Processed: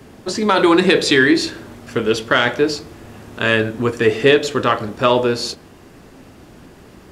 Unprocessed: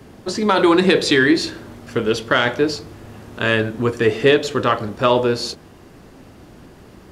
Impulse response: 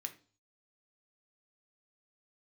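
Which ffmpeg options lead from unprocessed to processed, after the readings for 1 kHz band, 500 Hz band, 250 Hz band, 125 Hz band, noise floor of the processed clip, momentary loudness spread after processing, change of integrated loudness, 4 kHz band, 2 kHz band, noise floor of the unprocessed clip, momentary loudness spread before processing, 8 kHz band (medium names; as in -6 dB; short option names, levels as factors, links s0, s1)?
+1.0 dB, +1.0 dB, +1.0 dB, -0.5 dB, -44 dBFS, 13 LU, +1.5 dB, +2.0 dB, +2.0 dB, -45 dBFS, 13 LU, +2.5 dB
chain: -filter_complex "[0:a]asplit=2[s0][s1];[1:a]atrim=start_sample=2205[s2];[s1][s2]afir=irnorm=-1:irlink=0,volume=0.422[s3];[s0][s3]amix=inputs=2:normalize=0"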